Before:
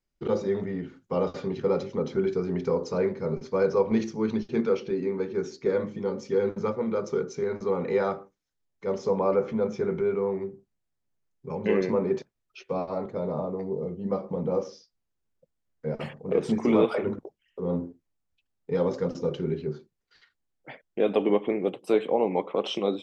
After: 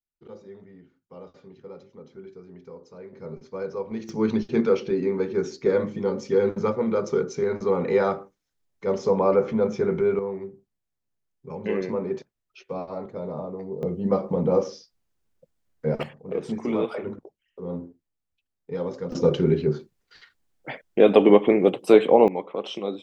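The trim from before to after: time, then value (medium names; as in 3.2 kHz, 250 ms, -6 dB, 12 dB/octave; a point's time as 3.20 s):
-17 dB
from 3.13 s -8 dB
from 4.09 s +4 dB
from 10.19 s -2.5 dB
from 13.83 s +6 dB
from 16.03 s -4 dB
from 19.12 s +8.5 dB
from 22.28 s -3 dB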